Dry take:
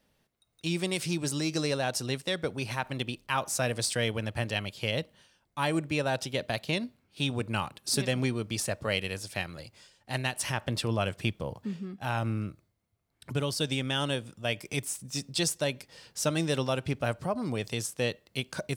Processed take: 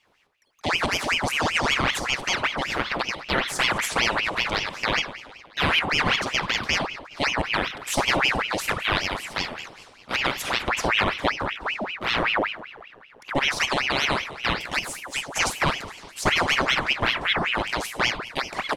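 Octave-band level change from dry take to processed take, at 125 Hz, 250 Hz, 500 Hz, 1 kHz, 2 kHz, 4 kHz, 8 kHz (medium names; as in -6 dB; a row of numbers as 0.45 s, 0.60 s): -3.0 dB, +0.5 dB, +2.5 dB, +11.0 dB, +12.5 dB, +9.0 dB, +2.0 dB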